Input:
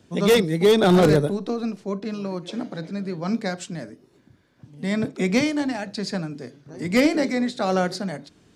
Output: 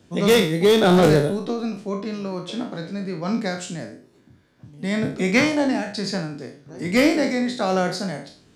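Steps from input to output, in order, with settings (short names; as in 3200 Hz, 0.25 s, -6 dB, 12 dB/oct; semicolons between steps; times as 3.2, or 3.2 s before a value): spectral trails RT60 0.45 s; 5.33–5.81 bell 2000 Hz -> 270 Hz +10 dB 1 oct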